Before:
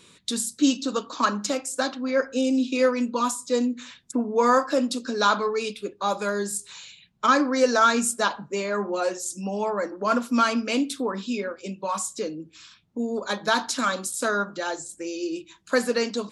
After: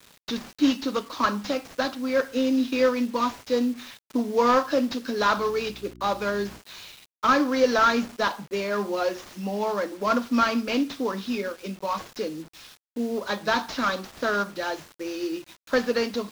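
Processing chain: CVSD 32 kbps; bit-crush 8-bit; 5.36–6.58 buzz 60 Hz, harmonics 6, -47 dBFS -2 dB/oct

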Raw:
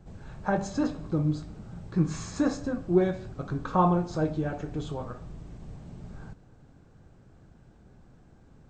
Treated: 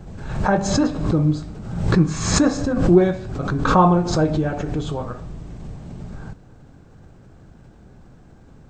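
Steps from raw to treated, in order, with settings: backwards sustainer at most 58 dB/s; gain +8 dB

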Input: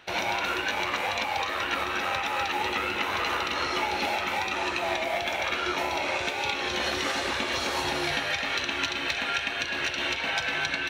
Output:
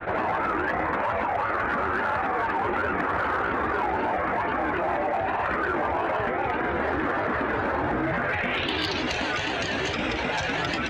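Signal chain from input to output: LPF 10000 Hz; tilt shelf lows +8.5 dB, about 1100 Hz; notches 60/120/180/240/300/360/420 Hz; grains 0.1 s, grains 20/s, spray 12 ms, pitch spread up and down by 3 st; low-pass sweep 1600 Hz -> 7300 Hz, 8.22–9.13; in parallel at -3.5 dB: hard clip -22.5 dBFS, distortion -15 dB; on the sum: fast leveller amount 70%; gain -5.5 dB

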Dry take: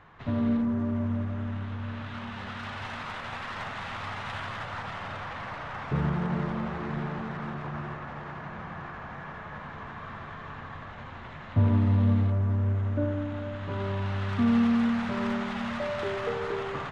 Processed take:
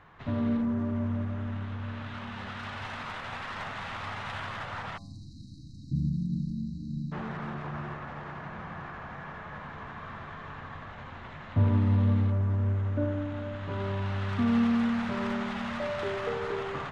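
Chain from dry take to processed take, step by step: spectral delete 4.98–7.12, 330–3800 Hz; de-hum 114.6 Hz, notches 10; gain -1 dB

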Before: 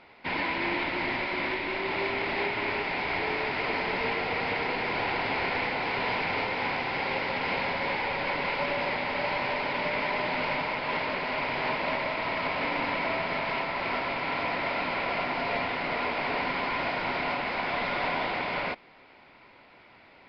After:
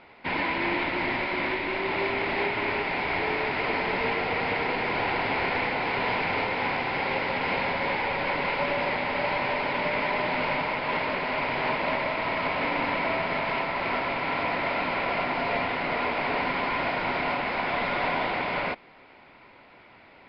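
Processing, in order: air absorption 110 m; gain +3 dB

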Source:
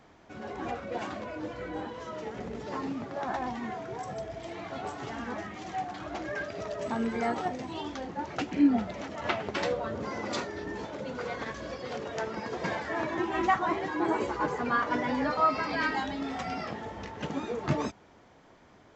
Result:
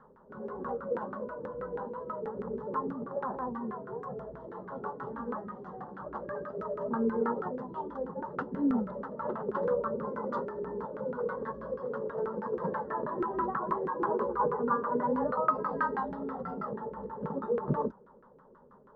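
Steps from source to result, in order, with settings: fixed phaser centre 470 Hz, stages 8; LFO low-pass saw down 6.2 Hz 340–1500 Hz

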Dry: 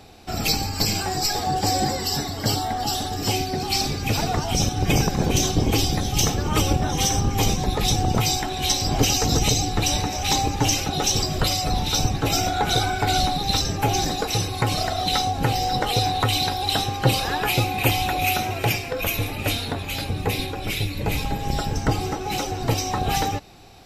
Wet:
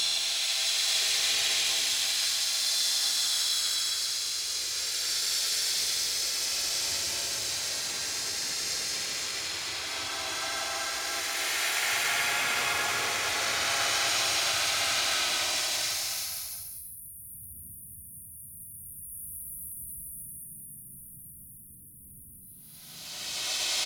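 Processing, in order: minimum comb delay 0.42 ms; weighting filter ITU-R 468; spectral delete 13.94–14.15, 220–11000 Hz; bell 200 Hz -9.5 dB 1.5 oct; compressor 6:1, threshold -20 dBFS, peak gain reduction 11 dB; limiter -15 dBFS, peak gain reduction 8 dB; vocal rider 2 s; Paulstretch 37×, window 0.05 s, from 13.51; resonator 460 Hz, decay 0.29 s, harmonics all, mix 30%; harmoniser -3 st 0 dB, +5 st -4 dB, +12 st -12 dB; gain -3.5 dB

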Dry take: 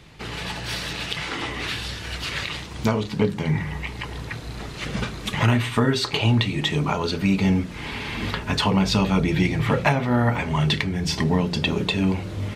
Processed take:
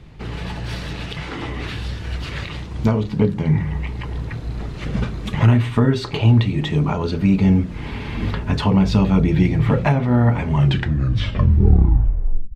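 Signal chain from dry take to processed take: tape stop at the end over 2.04 s; tilt -2.5 dB/oct; gain -1 dB

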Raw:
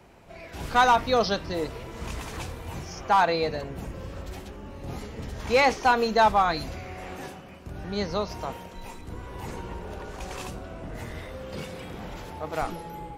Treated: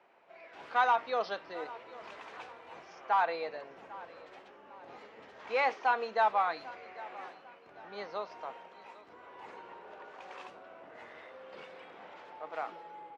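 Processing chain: BPF 560–2600 Hz; feedback echo 0.797 s, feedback 40%, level -19 dB; gain -6.5 dB

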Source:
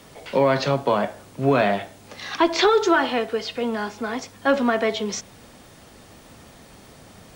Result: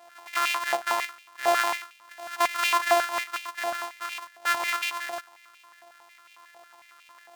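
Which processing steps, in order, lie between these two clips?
sample sorter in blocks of 128 samples; stepped high-pass 11 Hz 740–2500 Hz; gain -7 dB

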